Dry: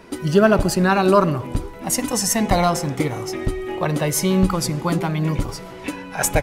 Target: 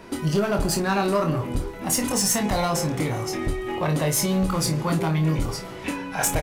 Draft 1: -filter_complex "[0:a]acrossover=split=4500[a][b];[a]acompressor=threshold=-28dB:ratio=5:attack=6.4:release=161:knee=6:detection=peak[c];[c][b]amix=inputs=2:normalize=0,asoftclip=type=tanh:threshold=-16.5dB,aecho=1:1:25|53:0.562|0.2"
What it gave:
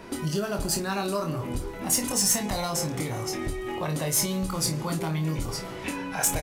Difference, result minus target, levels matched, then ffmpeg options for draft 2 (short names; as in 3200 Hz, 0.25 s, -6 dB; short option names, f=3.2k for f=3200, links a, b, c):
compressor: peak gain reduction +8.5 dB
-filter_complex "[0:a]acrossover=split=4500[a][b];[a]acompressor=threshold=-17.5dB:ratio=5:attack=6.4:release=161:knee=6:detection=peak[c];[c][b]amix=inputs=2:normalize=0,asoftclip=type=tanh:threshold=-16.5dB,aecho=1:1:25|53:0.562|0.2"